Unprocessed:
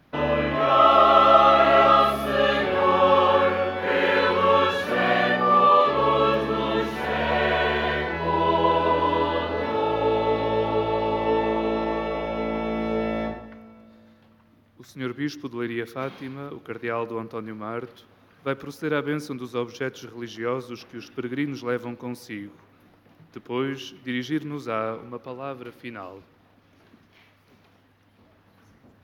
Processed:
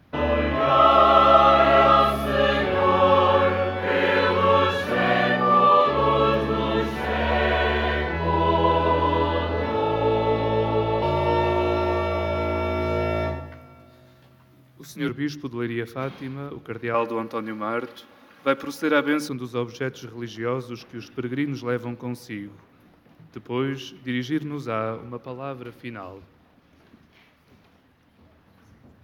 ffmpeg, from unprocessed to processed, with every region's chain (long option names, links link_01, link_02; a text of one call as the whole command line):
ffmpeg -i in.wav -filter_complex "[0:a]asettb=1/sr,asplit=3[link_01][link_02][link_03];[link_01]atrim=end=11.024[link_04];[link_02]atrim=start=11.02:end=15.09,asetpts=PTS-STARTPTS,afade=type=in:duration=0.004:curve=qsin,afade=type=out:start_time=4.066:duration=0.004:curve=qsin,highshelf=frequency=4800:gain=9.5,afreqshift=28,asplit=2[link_05][link_06];[link_06]adelay=14,volume=-4dB[link_07];[link_05][link_07]amix=inputs=2:normalize=0,atrim=end_sample=179487[link_08];[link_03]atrim=start=15.086[link_09];[link_04][link_08]acrossfade=duration=0.004:curve1=hsin:curve2=qsin[link_10];[link_10][link_09]acrossfade=duration=0.004:curve1=qsin:curve2=hsin,asettb=1/sr,asplit=3[link_11][link_12][link_13];[link_11]atrim=end=16.944[link_14];[link_12]atrim=start=16.94:end=19.29,asetpts=PTS-STARTPTS,afade=type=in:duration=0.004:curve=qsin,afade=type=out:start_time=2.346:duration=0.004:curve=qsin,highpass=frequency=420:poles=1,aecho=1:1:3.6:0.5,atrim=end_sample=103635,acontrast=53[link_15];[link_13]atrim=start=19.286[link_16];[link_14][link_15]acrossfade=duration=0.004:curve1=hsin:curve2=qsin[link_17];[link_17][link_16]acrossfade=duration=0.004:curve1=qsin:curve2=hsin,equalizer=frequency=86:width=0.84:gain=9,bandreject=frequency=50:width_type=h:width=6,bandreject=frequency=100:width_type=h:width=6,bandreject=frequency=150:width_type=h:width=6" out.wav